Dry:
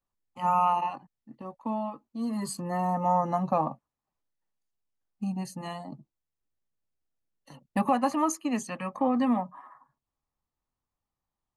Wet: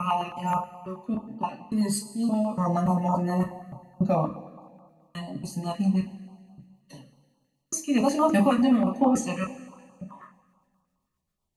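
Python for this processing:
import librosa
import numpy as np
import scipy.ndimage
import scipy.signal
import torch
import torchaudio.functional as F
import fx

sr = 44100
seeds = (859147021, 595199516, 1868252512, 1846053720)

y = fx.block_reorder(x, sr, ms=286.0, group=3)
y = fx.rotary(y, sr, hz=7.5)
y = fx.rev_double_slope(y, sr, seeds[0], early_s=0.23, late_s=1.8, knee_db=-18, drr_db=-0.5)
y = fx.filter_held_notch(y, sr, hz=9.4, low_hz=790.0, high_hz=2000.0)
y = y * 10.0 ** (5.5 / 20.0)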